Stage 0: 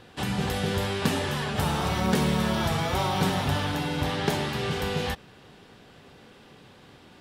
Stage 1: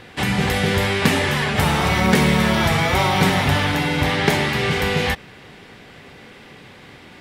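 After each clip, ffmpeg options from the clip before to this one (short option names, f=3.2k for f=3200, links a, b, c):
-af "equalizer=f=2.1k:t=o:w=0.47:g=9,volume=7.5dB"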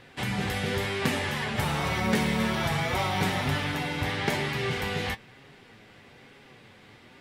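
-af "flanger=delay=7.2:depth=2.4:regen=52:speed=1.1:shape=sinusoidal,volume=-5.5dB"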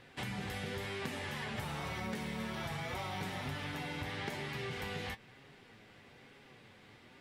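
-af "acompressor=threshold=-31dB:ratio=5,volume=-6dB"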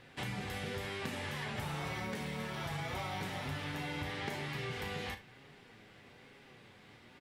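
-af "aecho=1:1:34|74:0.316|0.15"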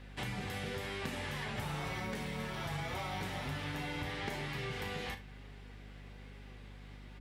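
-af "aeval=exprs='val(0)+0.00316*(sin(2*PI*50*n/s)+sin(2*PI*2*50*n/s)/2+sin(2*PI*3*50*n/s)/3+sin(2*PI*4*50*n/s)/4+sin(2*PI*5*50*n/s)/5)':c=same"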